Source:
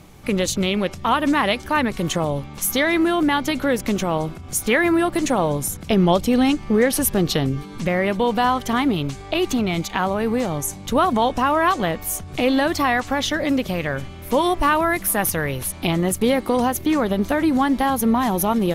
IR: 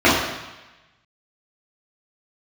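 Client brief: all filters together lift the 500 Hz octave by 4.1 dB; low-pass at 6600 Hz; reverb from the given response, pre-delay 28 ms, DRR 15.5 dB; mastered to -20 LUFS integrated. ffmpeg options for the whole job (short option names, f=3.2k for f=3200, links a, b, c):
-filter_complex "[0:a]lowpass=6.6k,equalizer=f=500:t=o:g=5,asplit=2[a][b];[1:a]atrim=start_sample=2205,adelay=28[c];[b][c]afir=irnorm=-1:irlink=0,volume=-42dB[d];[a][d]amix=inputs=2:normalize=0,volume=-1.5dB"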